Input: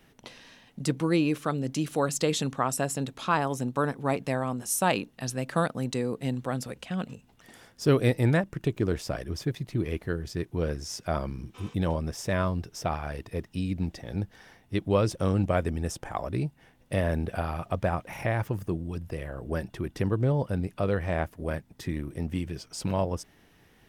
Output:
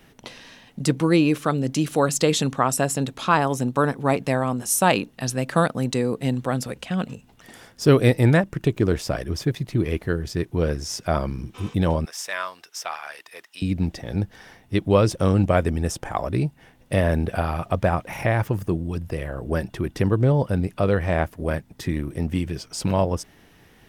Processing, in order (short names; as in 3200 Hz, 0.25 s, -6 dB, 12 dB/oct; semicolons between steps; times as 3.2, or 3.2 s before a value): 12.05–13.62 HPF 1200 Hz 12 dB/oct; gain +6.5 dB